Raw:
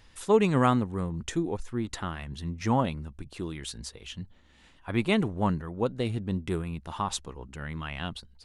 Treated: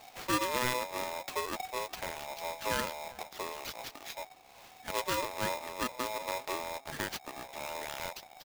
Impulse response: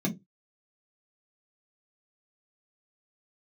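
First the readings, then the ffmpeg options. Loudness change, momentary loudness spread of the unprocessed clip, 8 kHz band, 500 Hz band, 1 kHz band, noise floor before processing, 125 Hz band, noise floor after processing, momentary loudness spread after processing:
−6.5 dB, 16 LU, +1.5 dB, −7.5 dB, −2.5 dB, −58 dBFS, −18.5 dB, −56 dBFS, 11 LU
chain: -filter_complex "[0:a]acrusher=bits=2:mode=log:mix=0:aa=0.000001,acompressor=threshold=-52dB:ratio=1.5,acrusher=samples=5:mix=1:aa=0.000001,asplit=2[link_01][link_02];[link_02]adelay=393,lowpass=frequency=1500:poles=1,volume=-20dB,asplit=2[link_03][link_04];[link_04]adelay=393,lowpass=frequency=1500:poles=1,volume=0.31[link_05];[link_03][link_05]amix=inputs=2:normalize=0[link_06];[link_01][link_06]amix=inputs=2:normalize=0,aeval=exprs='val(0)*sgn(sin(2*PI*750*n/s))':channel_layout=same,volume=2.5dB"

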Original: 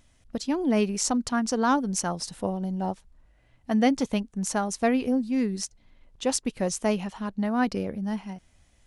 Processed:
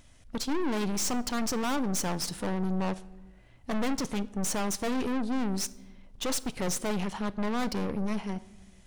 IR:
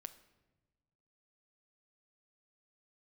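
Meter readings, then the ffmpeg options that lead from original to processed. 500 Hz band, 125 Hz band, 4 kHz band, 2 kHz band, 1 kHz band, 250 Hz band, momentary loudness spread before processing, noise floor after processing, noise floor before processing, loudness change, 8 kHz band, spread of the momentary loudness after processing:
−5.5 dB, −1.5 dB, 0.0 dB, −3.0 dB, −5.0 dB, −5.0 dB, 10 LU, −55 dBFS, −62 dBFS, −4.5 dB, −2.0 dB, 7 LU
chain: -filter_complex "[0:a]aeval=exprs='(tanh(63.1*val(0)+0.65)-tanh(0.65))/63.1':channel_layout=same,asplit=2[link_01][link_02];[1:a]atrim=start_sample=2205[link_03];[link_02][link_03]afir=irnorm=-1:irlink=0,volume=8.5dB[link_04];[link_01][link_04]amix=inputs=2:normalize=0"

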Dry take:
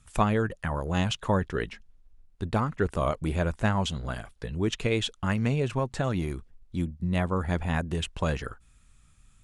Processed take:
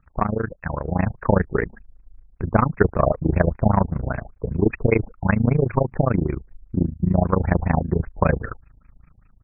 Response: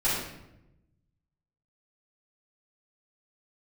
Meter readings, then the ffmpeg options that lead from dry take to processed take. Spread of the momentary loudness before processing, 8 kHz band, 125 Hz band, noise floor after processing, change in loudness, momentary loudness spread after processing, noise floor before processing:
10 LU, below −35 dB, +7.0 dB, −57 dBFS, +7.0 dB, 10 LU, −59 dBFS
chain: -af "dynaudnorm=framelen=610:gausssize=3:maxgain=7.5dB,tremolo=f=27:d=0.947,aeval=exprs='0.501*(cos(1*acos(clip(val(0)/0.501,-1,1)))-cos(1*PI/2))+0.0224*(cos(6*acos(clip(val(0)/0.501,-1,1)))-cos(6*PI/2))':channel_layout=same,afftfilt=real='re*lt(b*sr/1024,850*pow(2700/850,0.5+0.5*sin(2*PI*5.1*pts/sr)))':imag='im*lt(b*sr/1024,850*pow(2700/850,0.5+0.5*sin(2*PI*5.1*pts/sr)))':win_size=1024:overlap=0.75,volume=5dB"

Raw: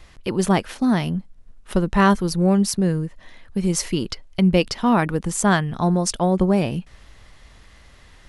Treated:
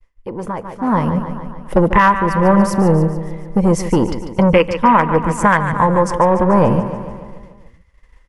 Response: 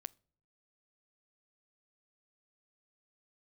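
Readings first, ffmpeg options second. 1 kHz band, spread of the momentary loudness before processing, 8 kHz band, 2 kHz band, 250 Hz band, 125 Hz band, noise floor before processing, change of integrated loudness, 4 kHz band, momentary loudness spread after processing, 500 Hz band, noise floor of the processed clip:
+10.0 dB, 9 LU, −5.5 dB, +7.0 dB, +3.5 dB, +4.5 dB, −49 dBFS, +6.0 dB, −3.5 dB, 14 LU, +7.5 dB, −51 dBFS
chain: -filter_complex "[0:a]afwtdn=0.0501,acrossover=split=790[link_01][link_02];[link_01]asoftclip=type=tanh:threshold=-22dB[link_03];[link_02]equalizer=frequency=2000:width=4.4:gain=8.5[link_04];[link_03][link_04]amix=inputs=2:normalize=0,agate=range=-33dB:threshold=-43dB:ratio=3:detection=peak,aecho=1:1:145|290|435|580|725|870|1015:0.266|0.154|0.0895|0.0519|0.0301|0.0175|0.0101[link_05];[1:a]atrim=start_sample=2205,asetrate=43218,aresample=44100[link_06];[link_05][link_06]afir=irnorm=-1:irlink=0,asoftclip=type=hard:threshold=-13.5dB,equalizer=frequency=500:width_type=o:width=0.33:gain=10,equalizer=frequency=1000:width_type=o:width=0.33:gain=10,equalizer=frequency=4000:width_type=o:width=0.33:gain=-7,alimiter=limit=-18.5dB:level=0:latency=1:release=491,bandreject=frequency=700:width=12,dynaudnorm=framelen=260:gausssize=7:maxgain=16dB,volume=2dB"

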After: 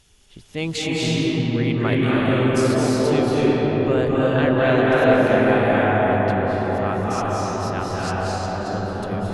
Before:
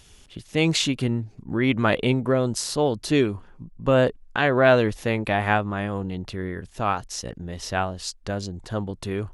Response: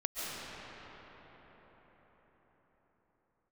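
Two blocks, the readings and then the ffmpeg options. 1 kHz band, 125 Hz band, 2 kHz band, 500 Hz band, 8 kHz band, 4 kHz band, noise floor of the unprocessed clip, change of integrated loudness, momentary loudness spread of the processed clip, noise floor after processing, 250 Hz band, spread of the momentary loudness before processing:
+4.5 dB, +4.0 dB, +2.5 dB, +4.5 dB, −1.5 dB, 0.0 dB, −52 dBFS, +4.0 dB, 9 LU, −47 dBFS, +5.5 dB, 11 LU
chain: -filter_complex "[1:a]atrim=start_sample=2205,asetrate=27783,aresample=44100[link_01];[0:a][link_01]afir=irnorm=-1:irlink=0,volume=-5.5dB"

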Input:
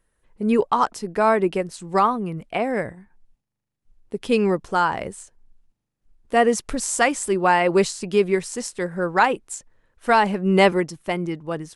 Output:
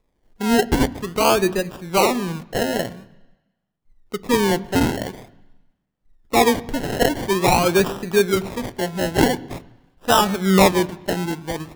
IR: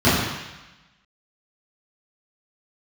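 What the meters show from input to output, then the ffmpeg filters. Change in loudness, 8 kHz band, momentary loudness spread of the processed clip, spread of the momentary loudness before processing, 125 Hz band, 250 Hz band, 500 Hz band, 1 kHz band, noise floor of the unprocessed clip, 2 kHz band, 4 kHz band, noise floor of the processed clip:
+1.5 dB, +2.5 dB, 12 LU, 12 LU, +5.0 dB, +3.0 dB, +1.0 dB, −1.0 dB, −81 dBFS, 0.0 dB, +7.5 dB, −73 dBFS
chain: -filter_complex "[0:a]acrusher=samples=29:mix=1:aa=0.000001:lfo=1:lforange=17.4:lforate=0.47,asplit=2[link_01][link_02];[1:a]atrim=start_sample=2205[link_03];[link_02][link_03]afir=irnorm=-1:irlink=0,volume=-41dB[link_04];[link_01][link_04]amix=inputs=2:normalize=0,volume=1dB"

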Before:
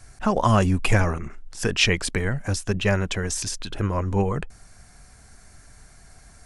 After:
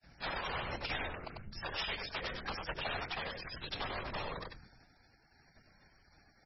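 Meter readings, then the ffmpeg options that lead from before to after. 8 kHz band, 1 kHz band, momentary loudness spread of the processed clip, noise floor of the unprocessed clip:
below −35 dB, −13.0 dB, 8 LU, −51 dBFS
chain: -filter_complex "[0:a]agate=range=-33dB:threshold=-39dB:ratio=3:detection=peak,equalizer=frequency=1100:width=2.5:gain=-4,afreqshift=49,acompressor=threshold=-34dB:ratio=6,aresample=16000,aeval=exprs='(mod(26.6*val(0)+1,2)-1)/26.6':channel_layout=same,aresample=44100,bass=frequency=250:gain=-9,treble=frequency=4000:gain=-1,acrossover=split=440|3900[link_01][link_02][link_03];[link_01]aeval=exprs='abs(val(0))':channel_layout=same[link_04];[link_04][link_02][link_03]amix=inputs=3:normalize=0,afftfilt=real='hypot(re,im)*cos(2*PI*random(0))':imag='hypot(re,im)*sin(2*PI*random(1))':win_size=512:overlap=0.75,aecho=1:1:95:0.668,volume=6dB" -ar 24000 -c:a libmp3lame -b:a 16k

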